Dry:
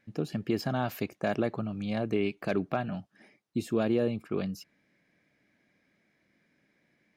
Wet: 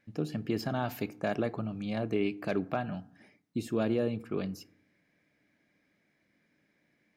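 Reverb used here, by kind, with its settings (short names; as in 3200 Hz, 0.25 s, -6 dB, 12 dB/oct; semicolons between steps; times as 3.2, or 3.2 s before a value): FDN reverb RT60 0.65 s, low-frequency decay 1.35×, high-frequency decay 0.45×, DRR 15 dB; gain -2 dB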